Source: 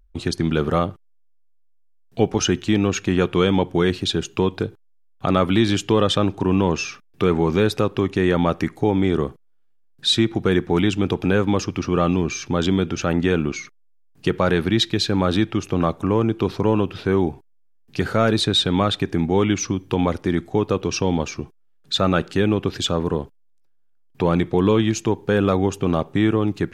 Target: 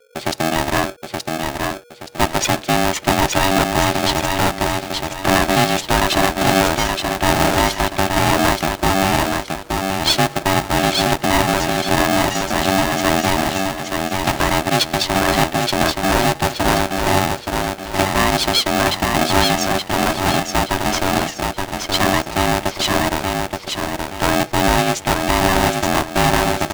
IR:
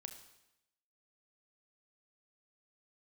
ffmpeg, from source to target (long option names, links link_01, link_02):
-filter_complex "[0:a]acrossover=split=310|470|1500[link_01][link_02][link_03][link_04];[link_02]acrusher=samples=36:mix=1:aa=0.000001[link_05];[link_01][link_05][link_03][link_04]amix=inputs=4:normalize=0,aecho=1:1:874|1748|2622|3496|4370:0.631|0.227|0.0818|0.0294|0.0106,aeval=exprs='val(0)*sgn(sin(2*PI*480*n/s))':channel_layout=same,volume=2dB"